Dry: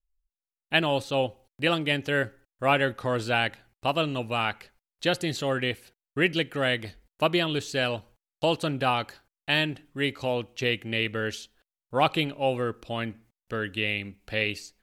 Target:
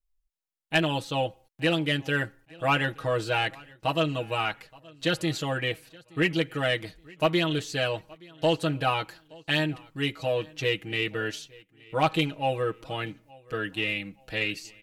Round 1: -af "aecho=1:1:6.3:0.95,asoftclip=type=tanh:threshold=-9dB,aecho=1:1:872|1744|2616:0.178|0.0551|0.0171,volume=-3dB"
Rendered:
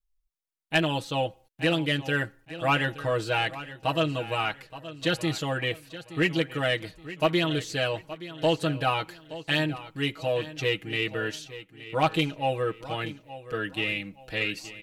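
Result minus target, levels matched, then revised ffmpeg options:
echo-to-direct +9.5 dB
-af "aecho=1:1:6.3:0.95,asoftclip=type=tanh:threshold=-9dB,aecho=1:1:872|1744:0.0596|0.0185,volume=-3dB"

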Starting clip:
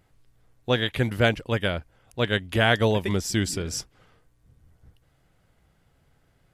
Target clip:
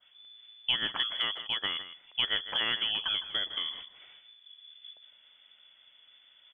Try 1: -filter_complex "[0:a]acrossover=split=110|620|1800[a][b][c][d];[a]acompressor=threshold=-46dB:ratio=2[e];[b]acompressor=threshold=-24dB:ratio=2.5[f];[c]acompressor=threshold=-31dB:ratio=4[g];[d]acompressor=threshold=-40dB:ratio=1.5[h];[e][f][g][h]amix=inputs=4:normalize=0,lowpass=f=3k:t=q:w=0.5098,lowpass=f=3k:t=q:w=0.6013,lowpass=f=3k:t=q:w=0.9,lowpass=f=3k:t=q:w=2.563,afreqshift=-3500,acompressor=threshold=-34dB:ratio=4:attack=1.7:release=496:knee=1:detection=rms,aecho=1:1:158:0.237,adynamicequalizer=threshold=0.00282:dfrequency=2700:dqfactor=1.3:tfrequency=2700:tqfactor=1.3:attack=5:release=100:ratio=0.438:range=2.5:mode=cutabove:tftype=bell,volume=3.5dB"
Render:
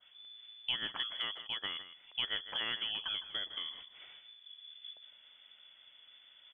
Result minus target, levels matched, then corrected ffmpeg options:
compressor: peak gain reduction +7 dB
-filter_complex "[0:a]acrossover=split=110|620|1800[a][b][c][d];[a]acompressor=threshold=-46dB:ratio=2[e];[b]acompressor=threshold=-24dB:ratio=2.5[f];[c]acompressor=threshold=-31dB:ratio=4[g];[d]acompressor=threshold=-40dB:ratio=1.5[h];[e][f][g][h]amix=inputs=4:normalize=0,lowpass=f=3k:t=q:w=0.5098,lowpass=f=3k:t=q:w=0.6013,lowpass=f=3k:t=q:w=0.9,lowpass=f=3k:t=q:w=2.563,afreqshift=-3500,acompressor=threshold=-25dB:ratio=4:attack=1.7:release=496:knee=1:detection=rms,aecho=1:1:158:0.237,adynamicequalizer=threshold=0.00282:dfrequency=2700:dqfactor=1.3:tfrequency=2700:tqfactor=1.3:attack=5:release=100:ratio=0.438:range=2.5:mode=cutabove:tftype=bell,volume=3.5dB"

